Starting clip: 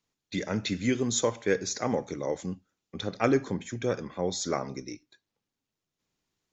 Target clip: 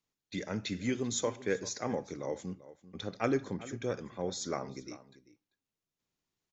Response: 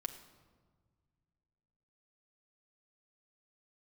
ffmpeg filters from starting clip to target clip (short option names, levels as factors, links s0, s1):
-filter_complex "[0:a]asplit=2[s0][s1];[s1]adelay=390.7,volume=0.158,highshelf=f=4000:g=-8.79[s2];[s0][s2]amix=inputs=2:normalize=0,volume=0.501"